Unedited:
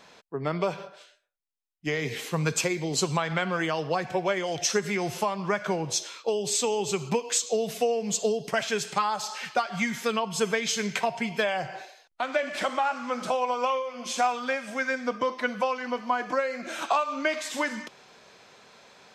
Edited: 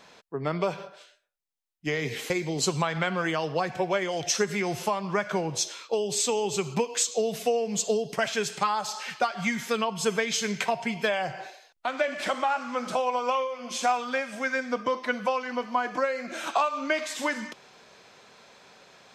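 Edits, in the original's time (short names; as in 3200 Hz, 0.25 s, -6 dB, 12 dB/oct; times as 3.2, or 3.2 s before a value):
2.3–2.65 cut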